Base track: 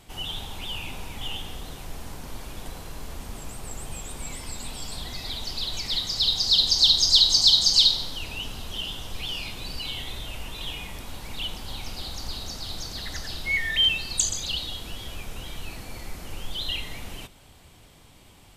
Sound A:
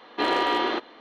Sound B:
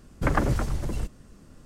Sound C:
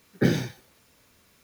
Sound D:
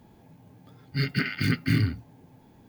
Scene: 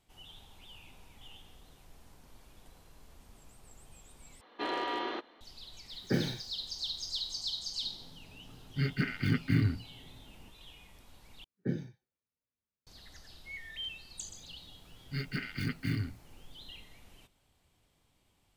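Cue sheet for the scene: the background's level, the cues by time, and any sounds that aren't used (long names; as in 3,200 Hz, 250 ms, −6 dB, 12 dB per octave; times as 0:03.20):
base track −19.5 dB
0:04.41: overwrite with A −11 dB
0:05.89: mix in C −8.5 dB
0:07.82: mix in D −4 dB + high-shelf EQ 2,800 Hz −9.5 dB
0:11.44: overwrite with C −11.5 dB + every bin expanded away from the loudest bin 1.5 to 1
0:14.17: mix in D −10 dB
not used: B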